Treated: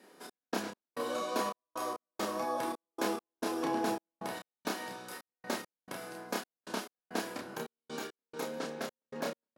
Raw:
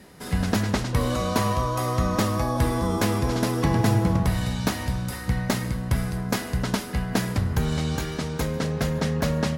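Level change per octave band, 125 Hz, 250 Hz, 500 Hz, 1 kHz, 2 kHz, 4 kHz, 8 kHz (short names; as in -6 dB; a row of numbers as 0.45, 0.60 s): -31.5, -14.5, -9.0, -8.5, -10.0, -10.5, -11.0 dB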